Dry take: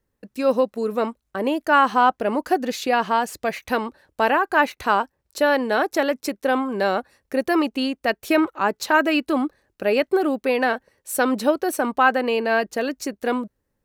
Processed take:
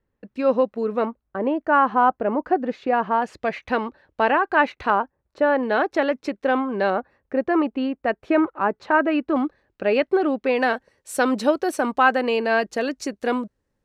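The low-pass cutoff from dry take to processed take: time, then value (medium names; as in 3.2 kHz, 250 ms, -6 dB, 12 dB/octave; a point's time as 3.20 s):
2.8 kHz
from 1.05 s 1.5 kHz
from 3.22 s 3.2 kHz
from 4.90 s 1.6 kHz
from 5.63 s 3.1 kHz
from 6.90 s 1.7 kHz
from 9.36 s 3.6 kHz
from 10.57 s 7.9 kHz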